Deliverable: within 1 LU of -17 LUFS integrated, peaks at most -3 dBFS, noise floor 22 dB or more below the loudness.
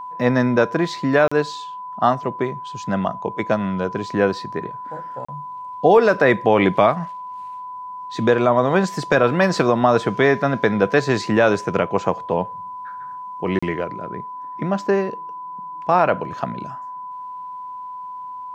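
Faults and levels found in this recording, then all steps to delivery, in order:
dropouts 3; longest dropout 35 ms; steady tone 1000 Hz; tone level -30 dBFS; loudness -19.5 LUFS; peak -3.5 dBFS; loudness target -17.0 LUFS
-> interpolate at 1.28/5.25/13.59, 35 ms; notch 1000 Hz, Q 30; gain +2.5 dB; limiter -3 dBFS

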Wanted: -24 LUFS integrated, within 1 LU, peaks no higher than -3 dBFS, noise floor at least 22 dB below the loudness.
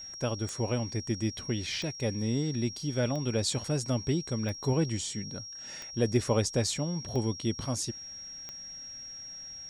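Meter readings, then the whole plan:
clicks 7; steady tone 5600 Hz; tone level -41 dBFS; loudness -32.0 LUFS; peak -13.5 dBFS; loudness target -24.0 LUFS
-> de-click; notch 5600 Hz, Q 30; gain +8 dB

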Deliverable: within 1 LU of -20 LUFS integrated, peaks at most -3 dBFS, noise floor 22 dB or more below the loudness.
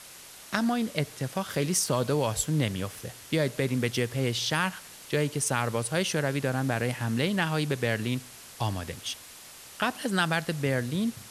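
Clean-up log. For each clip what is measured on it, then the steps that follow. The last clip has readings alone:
noise floor -48 dBFS; noise floor target -51 dBFS; loudness -28.5 LUFS; peak -7.0 dBFS; loudness target -20.0 LUFS
-> denoiser 6 dB, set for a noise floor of -48 dBFS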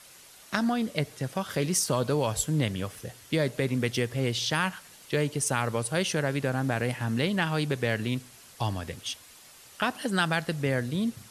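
noise floor -52 dBFS; loudness -28.5 LUFS; peak -7.5 dBFS; loudness target -20.0 LUFS
-> gain +8.5 dB; limiter -3 dBFS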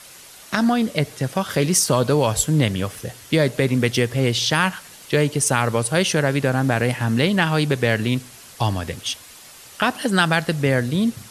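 loudness -20.5 LUFS; peak -3.0 dBFS; noise floor -44 dBFS

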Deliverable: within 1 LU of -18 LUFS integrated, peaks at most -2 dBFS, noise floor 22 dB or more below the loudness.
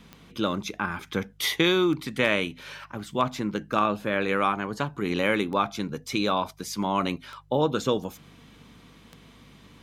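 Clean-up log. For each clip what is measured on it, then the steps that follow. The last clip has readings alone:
clicks 6; hum 50 Hz; harmonics up to 150 Hz; hum level -54 dBFS; loudness -27.0 LUFS; peak -8.5 dBFS; loudness target -18.0 LUFS
-> de-click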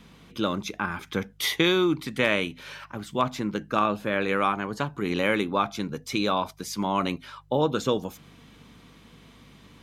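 clicks 0; hum 50 Hz; harmonics up to 150 Hz; hum level -54 dBFS
-> de-hum 50 Hz, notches 3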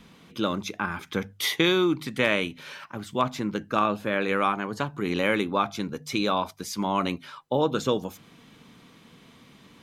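hum none; loudness -27.0 LUFS; peak -6.5 dBFS; loudness target -18.0 LUFS
-> gain +9 dB; limiter -2 dBFS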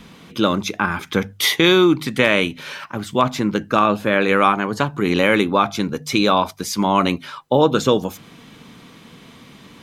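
loudness -18.0 LUFS; peak -2.0 dBFS; noise floor -45 dBFS

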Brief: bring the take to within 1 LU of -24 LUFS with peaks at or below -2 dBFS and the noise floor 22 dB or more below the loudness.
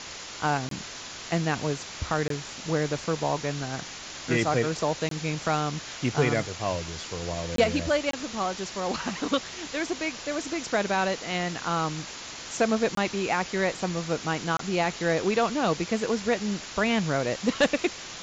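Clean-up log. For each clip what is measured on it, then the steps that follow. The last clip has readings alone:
dropouts 7; longest dropout 23 ms; noise floor -40 dBFS; noise floor target -50 dBFS; loudness -28.0 LUFS; peak -10.5 dBFS; loudness target -24.0 LUFS
-> interpolate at 0.69/2.28/5.09/7.56/8.11/12.95/14.57, 23 ms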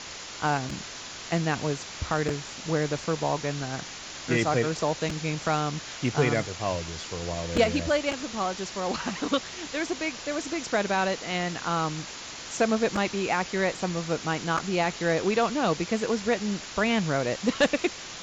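dropouts 0; noise floor -40 dBFS; noise floor target -50 dBFS
-> noise print and reduce 10 dB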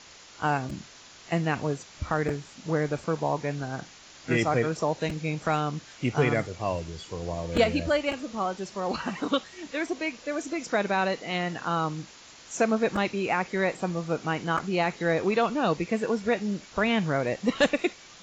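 noise floor -50 dBFS; loudness -28.0 LUFS; peak -10.5 dBFS; loudness target -24.0 LUFS
-> gain +4 dB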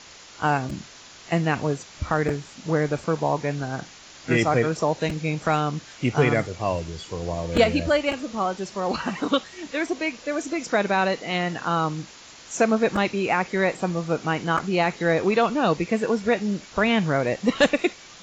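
loudness -24.0 LUFS; peak -6.5 dBFS; noise floor -46 dBFS

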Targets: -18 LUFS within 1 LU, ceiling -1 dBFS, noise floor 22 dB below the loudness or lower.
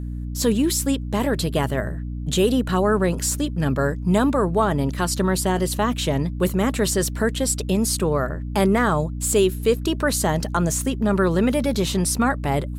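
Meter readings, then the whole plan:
hum 60 Hz; harmonics up to 300 Hz; hum level -26 dBFS; loudness -21.5 LUFS; peak -7.5 dBFS; loudness target -18.0 LUFS
-> de-hum 60 Hz, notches 5; gain +3.5 dB

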